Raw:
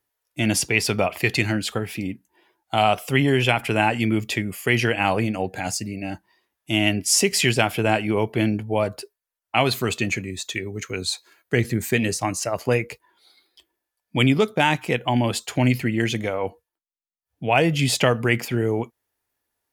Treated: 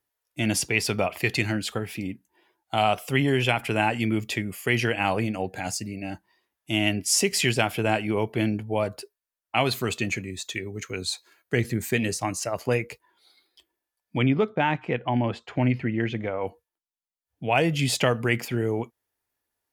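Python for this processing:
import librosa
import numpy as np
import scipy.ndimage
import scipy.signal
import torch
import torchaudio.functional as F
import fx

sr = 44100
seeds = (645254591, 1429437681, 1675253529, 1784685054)

y = fx.lowpass(x, sr, hz=2200.0, slope=12, at=(14.17, 16.4), fade=0.02)
y = F.gain(torch.from_numpy(y), -3.5).numpy()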